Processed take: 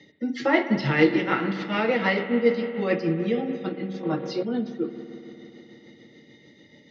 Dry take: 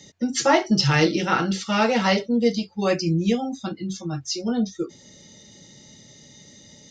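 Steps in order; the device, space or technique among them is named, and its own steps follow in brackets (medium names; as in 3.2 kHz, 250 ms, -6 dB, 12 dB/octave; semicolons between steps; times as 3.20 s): combo amplifier with spring reverb and tremolo (spring tank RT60 3.8 s, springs 57 ms, chirp 55 ms, DRR 8 dB; tremolo 6.8 Hz, depth 39%; cabinet simulation 94–3900 Hz, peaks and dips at 300 Hz +9 dB, 460 Hz +6 dB, 2 kHz +10 dB); 4.03–4.43 s: ten-band graphic EQ 500 Hz +9 dB, 1 kHz +12 dB, 4 kHz +6 dB; trim -4.5 dB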